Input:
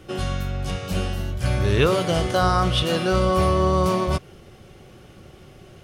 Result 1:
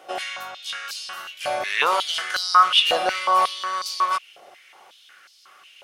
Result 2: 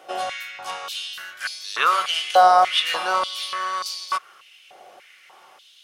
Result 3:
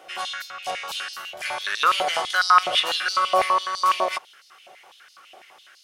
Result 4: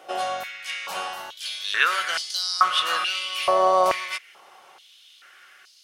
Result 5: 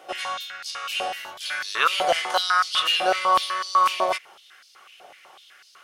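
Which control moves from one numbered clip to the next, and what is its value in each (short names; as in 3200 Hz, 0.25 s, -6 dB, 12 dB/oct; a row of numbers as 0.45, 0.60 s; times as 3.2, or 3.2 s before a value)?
stepped high-pass, rate: 5.5, 3.4, 12, 2.3, 8 Hz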